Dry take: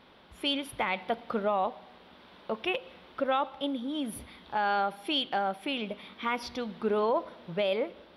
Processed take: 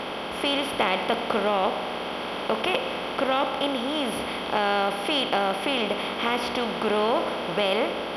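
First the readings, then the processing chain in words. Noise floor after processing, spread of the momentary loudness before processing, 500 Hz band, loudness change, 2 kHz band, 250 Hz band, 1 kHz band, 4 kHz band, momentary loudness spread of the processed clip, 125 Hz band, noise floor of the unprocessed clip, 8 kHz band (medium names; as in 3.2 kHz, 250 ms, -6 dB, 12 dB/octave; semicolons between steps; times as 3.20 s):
-32 dBFS, 9 LU, +6.5 dB, +6.0 dB, +7.5 dB, +5.5 dB, +6.0 dB, +8.0 dB, 5 LU, +6.5 dB, -55 dBFS, +7.0 dB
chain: spectral levelling over time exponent 0.4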